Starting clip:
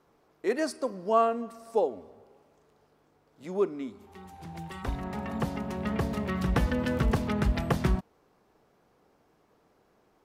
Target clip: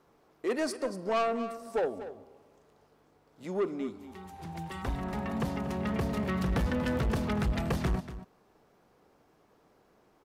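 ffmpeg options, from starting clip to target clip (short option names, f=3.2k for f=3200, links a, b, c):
-filter_complex "[0:a]asoftclip=type=tanh:threshold=-25dB,asplit=2[a][b];[b]aecho=0:1:238:0.224[c];[a][c]amix=inputs=2:normalize=0,volume=1dB"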